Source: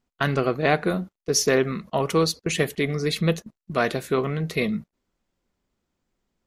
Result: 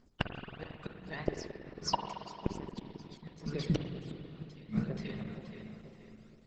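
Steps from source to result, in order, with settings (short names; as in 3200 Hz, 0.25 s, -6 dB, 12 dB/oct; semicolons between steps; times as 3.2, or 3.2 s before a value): compressor 16:1, threshold -21 dBFS, peak gain reduction 7.5 dB; phaser 0.76 Hz, delay 1.1 ms, feedback 79%; bell 4900 Hz +12.5 dB 0.31 oct; notches 50/100/150/200 Hz; darkening echo 0.477 s, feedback 43%, low-pass 3000 Hz, level -18 dB; flipped gate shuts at -17 dBFS, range -36 dB; 0.68–2.92 high shelf 3400 Hz -> 5700 Hz +3.5 dB; reverb RT60 3.0 s, pre-delay 45 ms, DRR 4.5 dB; gain +1.5 dB; Opus 10 kbps 48000 Hz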